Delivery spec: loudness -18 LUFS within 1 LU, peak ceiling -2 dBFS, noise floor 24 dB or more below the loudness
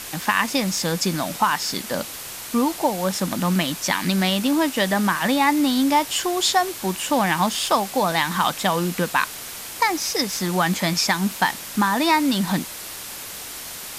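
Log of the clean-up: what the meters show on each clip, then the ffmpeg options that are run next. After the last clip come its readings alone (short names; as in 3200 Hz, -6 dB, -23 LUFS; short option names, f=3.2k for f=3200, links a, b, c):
noise floor -35 dBFS; noise floor target -46 dBFS; loudness -21.5 LUFS; peak -4.5 dBFS; loudness target -18.0 LUFS
-> -af "afftdn=nr=11:nf=-35"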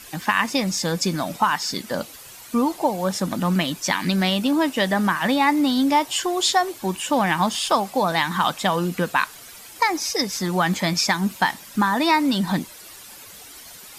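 noise floor -42 dBFS; noise floor target -46 dBFS
-> -af "afftdn=nr=6:nf=-42"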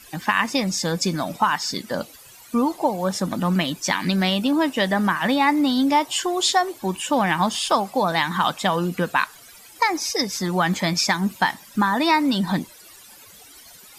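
noise floor -47 dBFS; loudness -21.5 LUFS; peak -4.5 dBFS; loudness target -18.0 LUFS
-> -af "volume=3.5dB,alimiter=limit=-2dB:level=0:latency=1"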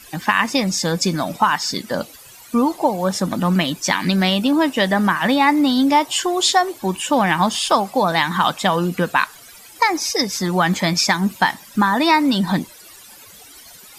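loudness -18.0 LUFS; peak -2.0 dBFS; noise floor -43 dBFS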